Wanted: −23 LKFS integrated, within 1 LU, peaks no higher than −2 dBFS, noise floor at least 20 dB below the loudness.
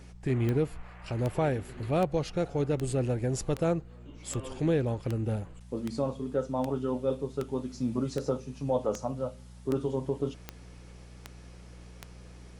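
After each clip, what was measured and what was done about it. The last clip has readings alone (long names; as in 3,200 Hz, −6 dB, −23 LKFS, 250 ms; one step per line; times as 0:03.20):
number of clicks 16; mains hum 60 Hz; hum harmonics up to 180 Hz; level of the hum −47 dBFS; integrated loudness −31.5 LKFS; sample peak −16.0 dBFS; target loudness −23.0 LKFS
→ click removal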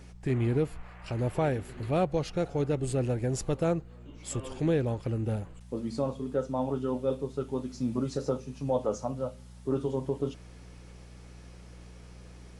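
number of clicks 0; mains hum 60 Hz; hum harmonics up to 180 Hz; level of the hum −47 dBFS
→ hum removal 60 Hz, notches 3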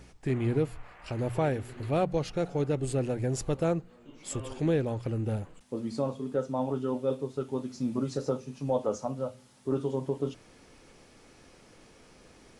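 mains hum none found; integrated loudness −31.5 LKFS; sample peak −16.0 dBFS; target loudness −23.0 LKFS
→ level +8.5 dB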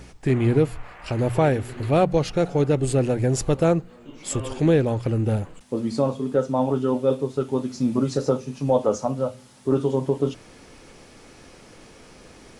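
integrated loudness −23.0 LKFS; sample peak −7.5 dBFS; background noise floor −48 dBFS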